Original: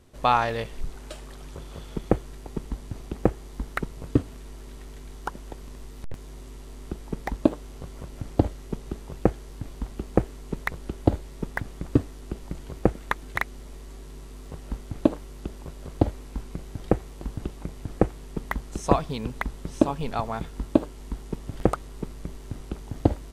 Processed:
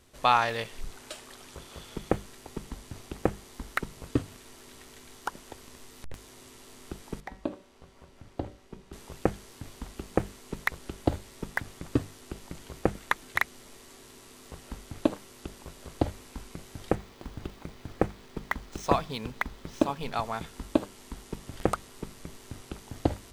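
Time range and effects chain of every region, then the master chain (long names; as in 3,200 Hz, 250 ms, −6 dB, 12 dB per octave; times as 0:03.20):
0:07.20–0:08.93: low-pass filter 3,000 Hz 6 dB per octave + mains-hum notches 60/120/180/240/300/360/420/480/540/600 Hz + tuned comb filter 190 Hz, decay 0.49 s
0:16.95–0:20.14: running median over 5 samples + notch filter 2,800 Hz, Q 29
whole clip: tilt shelving filter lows −4.5 dB; mains-hum notches 50/100/150/200 Hz; level −1.5 dB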